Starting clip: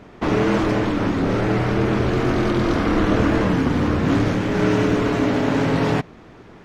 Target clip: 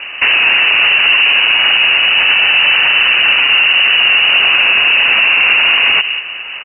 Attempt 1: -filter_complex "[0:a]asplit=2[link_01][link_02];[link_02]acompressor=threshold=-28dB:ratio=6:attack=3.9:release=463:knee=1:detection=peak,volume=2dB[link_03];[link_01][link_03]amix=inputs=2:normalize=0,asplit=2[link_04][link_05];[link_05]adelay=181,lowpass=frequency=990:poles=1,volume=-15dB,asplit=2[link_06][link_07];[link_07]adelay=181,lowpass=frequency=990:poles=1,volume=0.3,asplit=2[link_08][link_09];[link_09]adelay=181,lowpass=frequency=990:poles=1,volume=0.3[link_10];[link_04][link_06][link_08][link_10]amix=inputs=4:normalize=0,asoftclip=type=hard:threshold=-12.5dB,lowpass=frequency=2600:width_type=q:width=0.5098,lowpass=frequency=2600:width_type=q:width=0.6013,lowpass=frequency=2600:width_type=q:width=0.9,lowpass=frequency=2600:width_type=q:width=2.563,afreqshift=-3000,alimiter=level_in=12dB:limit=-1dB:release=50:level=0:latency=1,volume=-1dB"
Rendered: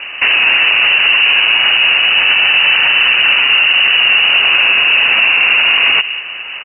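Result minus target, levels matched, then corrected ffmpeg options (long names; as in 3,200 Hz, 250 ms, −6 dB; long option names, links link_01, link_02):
downward compressor: peak gain reduction +8.5 dB
-filter_complex "[0:a]asplit=2[link_01][link_02];[link_02]acompressor=threshold=-18dB:ratio=6:attack=3.9:release=463:knee=1:detection=peak,volume=2dB[link_03];[link_01][link_03]amix=inputs=2:normalize=0,asplit=2[link_04][link_05];[link_05]adelay=181,lowpass=frequency=990:poles=1,volume=-15dB,asplit=2[link_06][link_07];[link_07]adelay=181,lowpass=frequency=990:poles=1,volume=0.3,asplit=2[link_08][link_09];[link_09]adelay=181,lowpass=frequency=990:poles=1,volume=0.3[link_10];[link_04][link_06][link_08][link_10]amix=inputs=4:normalize=0,asoftclip=type=hard:threshold=-12.5dB,lowpass=frequency=2600:width_type=q:width=0.5098,lowpass=frequency=2600:width_type=q:width=0.6013,lowpass=frequency=2600:width_type=q:width=0.9,lowpass=frequency=2600:width_type=q:width=2.563,afreqshift=-3000,alimiter=level_in=12dB:limit=-1dB:release=50:level=0:latency=1,volume=-1dB"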